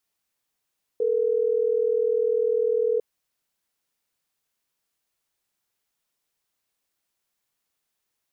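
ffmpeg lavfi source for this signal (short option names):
-f lavfi -i "aevalsrc='0.075*(sin(2*PI*440*t)+sin(2*PI*480*t))*clip(min(mod(t,6),2-mod(t,6))/0.005,0,1)':d=3.12:s=44100"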